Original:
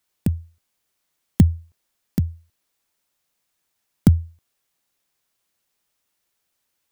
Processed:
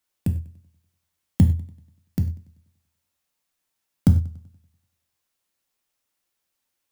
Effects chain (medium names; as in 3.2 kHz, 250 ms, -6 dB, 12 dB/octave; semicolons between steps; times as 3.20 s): dynamic bell 110 Hz, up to +4 dB, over -24 dBFS, Q 0.75; gated-style reverb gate 140 ms falling, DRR 5 dB; modulated delay 96 ms, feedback 48%, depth 99 cents, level -21 dB; trim -5 dB